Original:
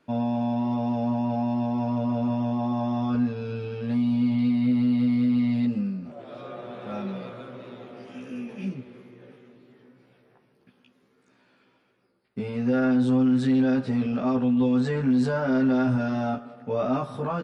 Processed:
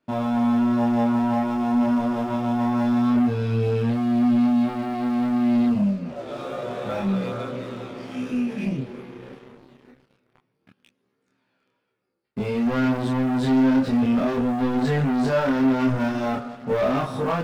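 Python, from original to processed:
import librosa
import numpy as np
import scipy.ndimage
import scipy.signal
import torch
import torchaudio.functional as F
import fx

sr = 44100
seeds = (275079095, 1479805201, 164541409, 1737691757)

y = fx.leveller(x, sr, passes=3)
y = fx.chorus_voices(y, sr, voices=2, hz=0.27, base_ms=28, depth_ms=2.5, mix_pct=45)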